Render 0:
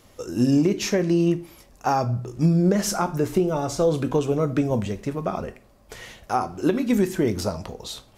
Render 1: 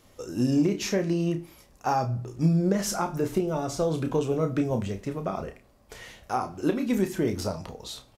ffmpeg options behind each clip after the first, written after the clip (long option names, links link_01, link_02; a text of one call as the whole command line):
ffmpeg -i in.wav -filter_complex "[0:a]asplit=2[link_01][link_02];[link_02]adelay=31,volume=-8dB[link_03];[link_01][link_03]amix=inputs=2:normalize=0,volume=-4.5dB" out.wav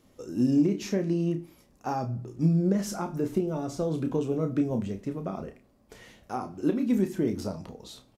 ffmpeg -i in.wav -af "equalizer=frequency=240:width=0.8:gain=9,volume=-7.5dB" out.wav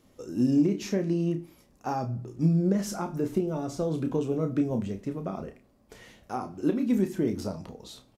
ffmpeg -i in.wav -af anull out.wav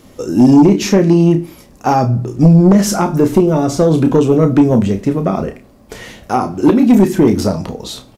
ffmpeg -i in.wav -af "aeval=exprs='0.266*sin(PI/2*2*val(0)/0.266)':channel_layout=same,volume=8.5dB" out.wav